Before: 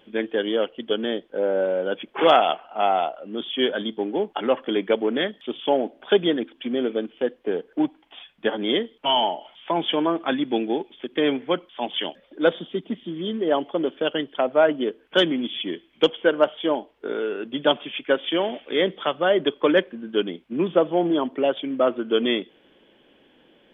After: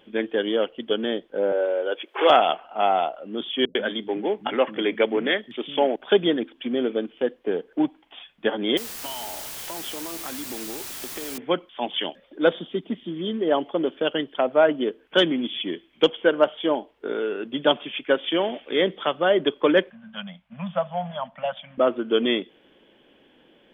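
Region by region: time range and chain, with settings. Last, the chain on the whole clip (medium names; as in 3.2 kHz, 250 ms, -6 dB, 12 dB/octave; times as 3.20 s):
1.52–2.30 s: Chebyshev high-pass 370 Hz, order 3 + tape noise reduction on one side only encoder only
3.65–5.96 s: peaking EQ 2.1 kHz +6.5 dB 0.67 oct + bands offset in time lows, highs 100 ms, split 200 Hz
8.77–11.38 s: compression 12:1, threshold -32 dBFS + word length cut 6-bit, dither triangular
19.90–21.78 s: elliptic band-stop 200–610 Hz, stop band 50 dB + treble shelf 3.2 kHz -10.5 dB
whole clip: none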